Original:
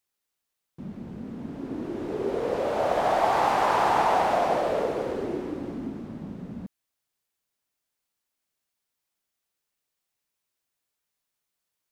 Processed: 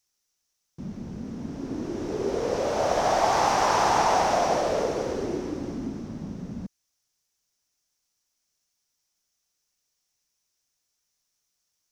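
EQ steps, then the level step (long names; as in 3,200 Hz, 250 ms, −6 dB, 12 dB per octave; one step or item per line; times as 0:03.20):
low-shelf EQ 110 Hz +7.5 dB
parametric band 5,800 Hz +15 dB 0.61 octaves
0.0 dB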